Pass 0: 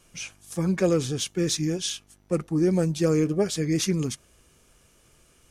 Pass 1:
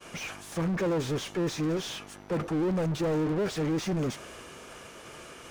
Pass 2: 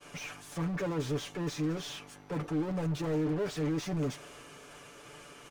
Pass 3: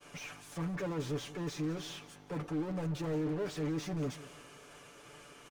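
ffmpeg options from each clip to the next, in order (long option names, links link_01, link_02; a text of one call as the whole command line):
ffmpeg -i in.wav -filter_complex "[0:a]volume=24dB,asoftclip=hard,volume=-24dB,agate=range=-33dB:threshold=-56dB:ratio=3:detection=peak,asplit=2[link_01][link_02];[link_02]highpass=frequency=720:poles=1,volume=32dB,asoftclip=type=tanh:threshold=-24dB[link_03];[link_01][link_03]amix=inputs=2:normalize=0,lowpass=frequency=1300:poles=1,volume=-6dB" out.wav
ffmpeg -i in.wav -af "aecho=1:1:6.9:0.65,volume=-6dB" out.wav
ffmpeg -i in.wav -af "aecho=1:1:180|360|540:0.126|0.0441|0.0154,volume=-3.5dB" out.wav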